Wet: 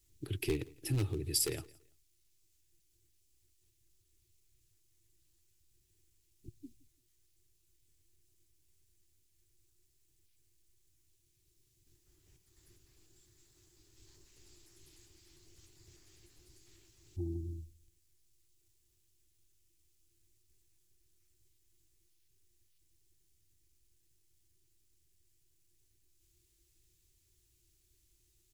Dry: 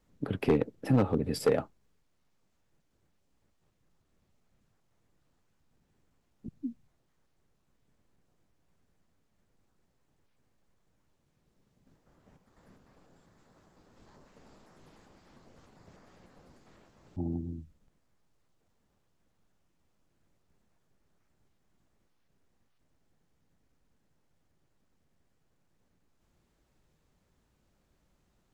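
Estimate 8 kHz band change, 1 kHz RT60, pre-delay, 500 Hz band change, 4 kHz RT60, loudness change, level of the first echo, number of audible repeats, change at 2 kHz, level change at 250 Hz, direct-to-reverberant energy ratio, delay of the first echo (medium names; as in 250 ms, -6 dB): no reading, no reverb, no reverb, -11.5 dB, no reverb, -5.5 dB, -23.5 dB, 1, -5.0 dB, -11.0 dB, no reverb, 168 ms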